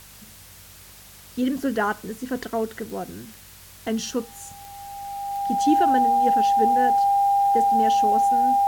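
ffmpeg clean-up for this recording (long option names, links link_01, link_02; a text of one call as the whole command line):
ffmpeg -i in.wav -af "adeclick=threshold=4,bandreject=frequency=50.1:width_type=h:width=4,bandreject=frequency=100.2:width_type=h:width=4,bandreject=frequency=150.3:width_type=h:width=4,bandreject=frequency=200.4:width_type=h:width=4,bandreject=frequency=800:width=30,afwtdn=0.005" out.wav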